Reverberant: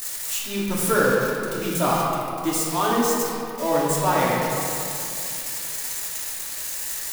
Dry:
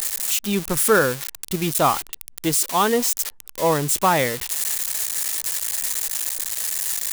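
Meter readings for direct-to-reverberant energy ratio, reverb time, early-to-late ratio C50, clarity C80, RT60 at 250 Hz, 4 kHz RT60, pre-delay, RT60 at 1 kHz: -8.5 dB, 2.7 s, -2.0 dB, -0.5 dB, 3.2 s, 1.4 s, 3 ms, 2.5 s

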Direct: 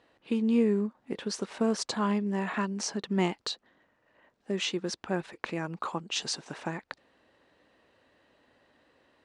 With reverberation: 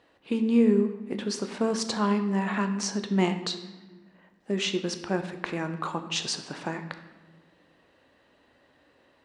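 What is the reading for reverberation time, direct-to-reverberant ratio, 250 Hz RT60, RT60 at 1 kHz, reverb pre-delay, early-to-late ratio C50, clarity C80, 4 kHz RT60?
1.2 s, 7.5 dB, 2.2 s, 1.1 s, 11 ms, 10.0 dB, 12.0 dB, 0.90 s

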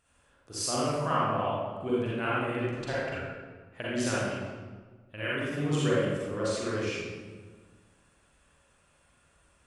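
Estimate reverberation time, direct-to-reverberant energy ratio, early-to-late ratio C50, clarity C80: 1.5 s, -8.0 dB, -5.5 dB, -1.0 dB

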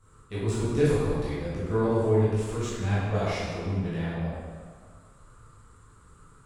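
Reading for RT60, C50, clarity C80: 1.8 s, -3.0 dB, -0.5 dB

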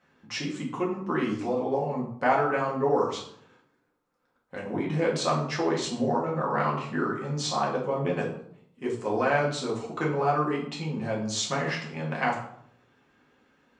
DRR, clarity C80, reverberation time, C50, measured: -4.0 dB, 9.5 dB, 0.65 s, 6.0 dB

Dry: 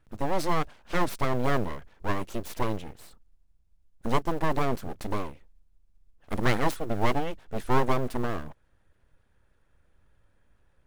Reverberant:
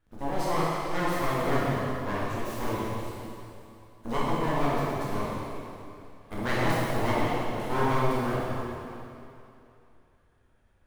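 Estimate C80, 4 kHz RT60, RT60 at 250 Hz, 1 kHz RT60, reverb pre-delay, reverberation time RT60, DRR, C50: -2.0 dB, 2.6 s, 2.7 s, 2.8 s, 6 ms, 2.8 s, -8.0 dB, -4.0 dB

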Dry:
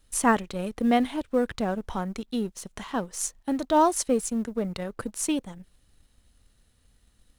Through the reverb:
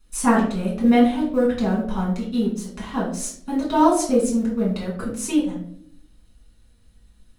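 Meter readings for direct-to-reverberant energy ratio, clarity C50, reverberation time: -6.5 dB, 5.5 dB, 0.65 s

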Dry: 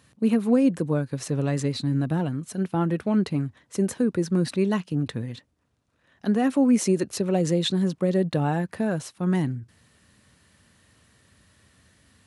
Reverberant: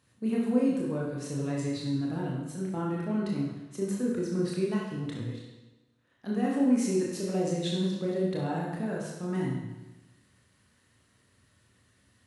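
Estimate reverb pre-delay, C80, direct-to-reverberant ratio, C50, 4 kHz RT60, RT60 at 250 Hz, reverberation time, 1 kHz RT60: 25 ms, 3.5 dB, -4.0 dB, 1.0 dB, 1.0 s, 1.1 s, 1.1 s, 1.1 s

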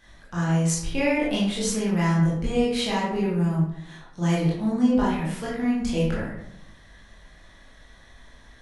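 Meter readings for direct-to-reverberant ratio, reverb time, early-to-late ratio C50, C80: -7.0 dB, 0.80 s, 1.0 dB, 5.0 dB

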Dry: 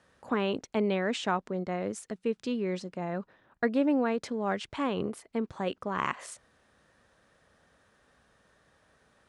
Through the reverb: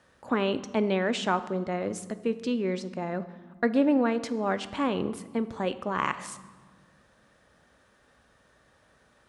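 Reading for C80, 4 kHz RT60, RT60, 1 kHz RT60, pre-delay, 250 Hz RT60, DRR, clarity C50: 16.5 dB, 1.0 s, 1.6 s, 1.5 s, 3 ms, 2.6 s, 11.5 dB, 14.5 dB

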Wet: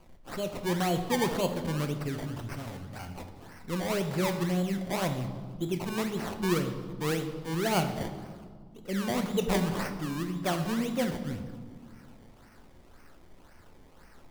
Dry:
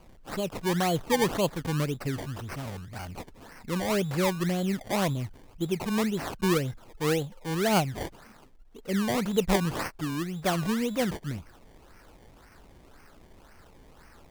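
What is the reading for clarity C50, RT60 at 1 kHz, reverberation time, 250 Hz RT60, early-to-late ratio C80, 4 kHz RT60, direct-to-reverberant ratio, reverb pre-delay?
9.0 dB, 1.6 s, 1.8 s, 2.7 s, 10.5 dB, 1.1 s, 6.0 dB, 3 ms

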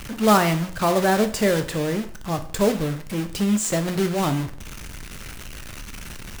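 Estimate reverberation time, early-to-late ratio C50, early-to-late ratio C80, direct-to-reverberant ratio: 0.50 s, 13.0 dB, 17.0 dB, 7.5 dB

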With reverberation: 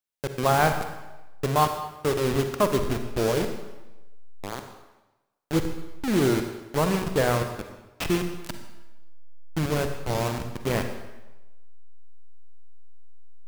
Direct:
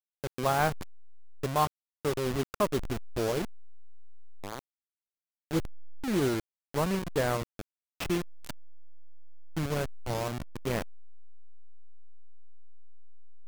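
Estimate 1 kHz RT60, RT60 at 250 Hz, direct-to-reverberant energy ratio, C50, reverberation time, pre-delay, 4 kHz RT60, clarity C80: 1.1 s, 1.0 s, 6.5 dB, 7.5 dB, 1.1 s, 40 ms, 0.95 s, 9.0 dB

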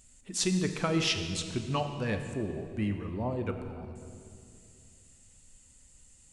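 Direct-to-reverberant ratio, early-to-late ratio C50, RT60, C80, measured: 5.5 dB, 7.5 dB, 2.5 s, 8.0 dB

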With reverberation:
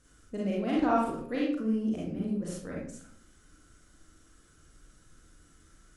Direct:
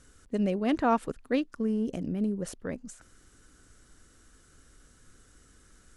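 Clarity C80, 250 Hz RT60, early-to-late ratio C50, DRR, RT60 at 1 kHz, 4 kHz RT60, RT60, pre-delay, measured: 5.5 dB, 0.70 s, 0.5 dB, -5.0 dB, 0.55 s, 0.40 s, 0.60 s, 32 ms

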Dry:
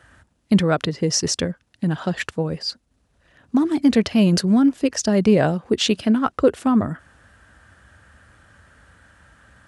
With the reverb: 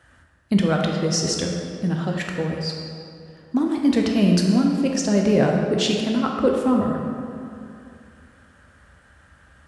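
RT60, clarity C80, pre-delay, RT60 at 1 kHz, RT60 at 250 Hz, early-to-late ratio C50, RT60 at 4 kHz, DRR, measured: 2.5 s, 3.5 dB, 11 ms, 2.5 s, 2.6 s, 2.0 dB, 1.6 s, 0.0 dB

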